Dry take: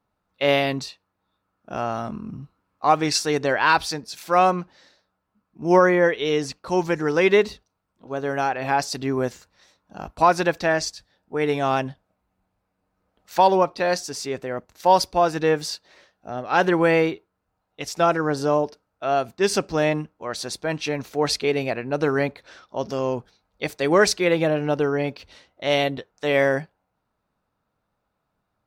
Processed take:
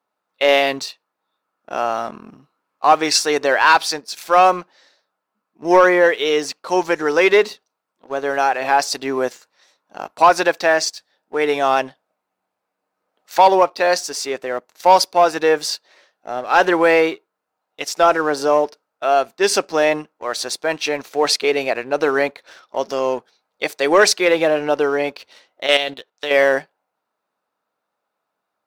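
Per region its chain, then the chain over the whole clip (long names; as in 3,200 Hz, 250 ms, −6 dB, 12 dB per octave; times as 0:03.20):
0:25.66–0:26.31: output level in coarse steps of 10 dB + parametric band 3,500 Hz +9 dB 1 octave + highs frequency-modulated by the lows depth 0.12 ms
whole clip: high-pass filter 400 Hz 12 dB per octave; leveller curve on the samples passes 1; level +3 dB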